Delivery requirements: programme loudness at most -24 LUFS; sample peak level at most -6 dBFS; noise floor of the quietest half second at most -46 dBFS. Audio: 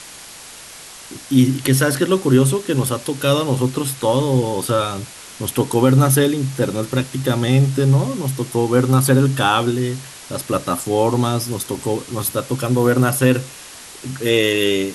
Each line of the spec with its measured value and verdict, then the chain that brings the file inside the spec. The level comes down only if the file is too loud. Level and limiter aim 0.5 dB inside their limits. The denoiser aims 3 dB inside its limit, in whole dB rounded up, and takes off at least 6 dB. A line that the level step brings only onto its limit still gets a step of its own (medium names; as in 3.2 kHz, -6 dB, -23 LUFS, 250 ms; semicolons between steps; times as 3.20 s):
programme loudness -18.0 LUFS: fail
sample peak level -2.5 dBFS: fail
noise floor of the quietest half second -38 dBFS: fail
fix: noise reduction 6 dB, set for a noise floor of -38 dBFS; trim -6.5 dB